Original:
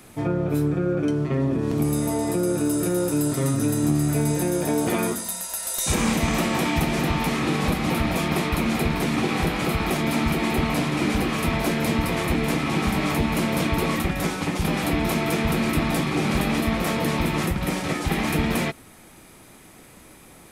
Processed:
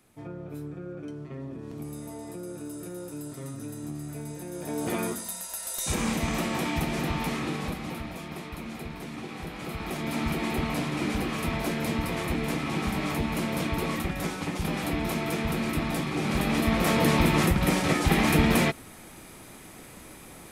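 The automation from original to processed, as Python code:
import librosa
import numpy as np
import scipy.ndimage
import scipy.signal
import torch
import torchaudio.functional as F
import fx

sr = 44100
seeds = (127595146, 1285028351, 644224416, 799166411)

y = fx.gain(x, sr, db=fx.line((4.46, -15.5), (4.9, -6.0), (7.32, -6.0), (8.18, -15.0), (9.4, -15.0), (10.26, -6.0), (16.15, -6.0), (17.01, 1.5)))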